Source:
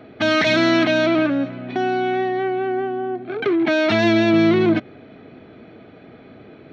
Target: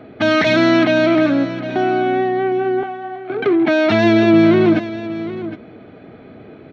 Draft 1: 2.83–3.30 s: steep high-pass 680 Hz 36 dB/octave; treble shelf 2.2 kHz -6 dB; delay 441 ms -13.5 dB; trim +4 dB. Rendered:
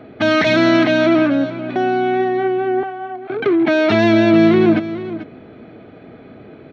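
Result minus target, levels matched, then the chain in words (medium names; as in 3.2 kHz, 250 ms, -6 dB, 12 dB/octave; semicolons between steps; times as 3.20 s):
echo 320 ms early
2.83–3.30 s: steep high-pass 680 Hz 36 dB/octave; treble shelf 2.2 kHz -6 dB; delay 761 ms -13.5 dB; trim +4 dB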